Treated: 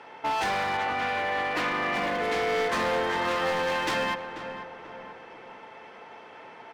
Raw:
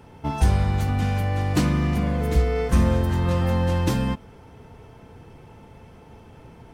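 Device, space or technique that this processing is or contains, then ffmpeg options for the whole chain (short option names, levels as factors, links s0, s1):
megaphone: -filter_complex "[0:a]highpass=640,lowpass=3800,equalizer=f=1900:t=o:w=0.43:g=4.5,asoftclip=type=hard:threshold=0.0266,asettb=1/sr,asplit=3[s0][s1][s2];[s0]atrim=end=0.774[s3];[s1]atrim=start=0.77:end=1.94,asetpts=PTS-STARTPTS,afade=t=in:d=0.004:c=qsin,afade=t=out:st=1.166:d=0.004:c=qsin,bass=f=250:g=-4,treble=f=4000:g=-9[s4];[s2]atrim=start=1.936[s5];[s3][s4]acrossfade=d=0.004:c1=hsin:c2=qsin[s6];[s6][s5]acrossfade=d=0.004:c1=qsin:c2=hsin,asplit=2[s7][s8];[s8]adelay=488,lowpass=f=1900:p=1,volume=0.355,asplit=2[s9][s10];[s10]adelay=488,lowpass=f=1900:p=1,volume=0.47,asplit=2[s11][s12];[s12]adelay=488,lowpass=f=1900:p=1,volume=0.47,asplit=2[s13][s14];[s14]adelay=488,lowpass=f=1900:p=1,volume=0.47,asplit=2[s15][s16];[s16]adelay=488,lowpass=f=1900:p=1,volume=0.47[s17];[s7][s9][s11][s13][s15][s17]amix=inputs=6:normalize=0,volume=2.37"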